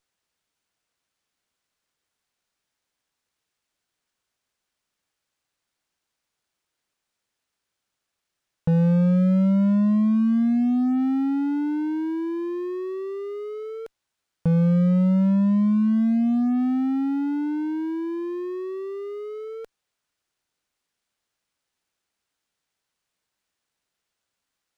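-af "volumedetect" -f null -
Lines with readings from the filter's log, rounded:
mean_volume: -25.4 dB
max_volume: -16.7 dB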